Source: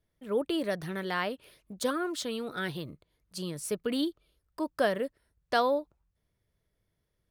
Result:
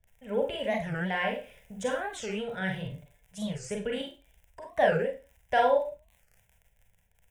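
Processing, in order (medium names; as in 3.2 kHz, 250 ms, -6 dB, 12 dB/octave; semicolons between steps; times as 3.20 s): low-pass 7.5 kHz 24 dB/octave; bass shelf 79 Hz +11 dB; 1.15–2.18 s: added noise pink -69 dBFS; 2.85–3.49 s: comb 6.9 ms, depth 81%; 4.01–4.73 s: compression, threshold -38 dBFS, peak gain reduction 12 dB; crackle 33 per s -45 dBFS; static phaser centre 1.2 kHz, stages 6; Schroeder reverb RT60 0.31 s, combs from 32 ms, DRR 0.5 dB; warped record 45 rpm, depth 250 cents; trim +2.5 dB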